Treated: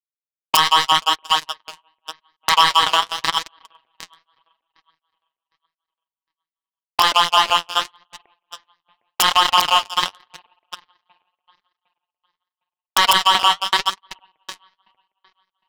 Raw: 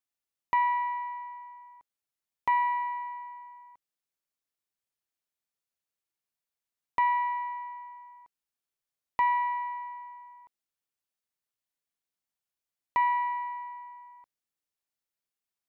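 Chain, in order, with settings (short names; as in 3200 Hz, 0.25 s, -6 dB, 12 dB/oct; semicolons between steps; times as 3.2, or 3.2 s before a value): vocoder on a gliding note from D#3, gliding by +4 st; LFO low-pass saw up 5.9 Hz 520–3400 Hz; echo with dull and thin repeats by turns 0.379 s, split 960 Hz, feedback 80%, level -5 dB; power-law curve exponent 3; compressor 12:1, threshold -37 dBFS, peak gain reduction 17.5 dB; sample leveller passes 3; flange 0.85 Hz, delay 2.2 ms, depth 10 ms, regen +40%; wrapped overs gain 25.5 dB; high shelf 2400 Hz +10.5 dB; maximiser +31.5 dB; gain -1 dB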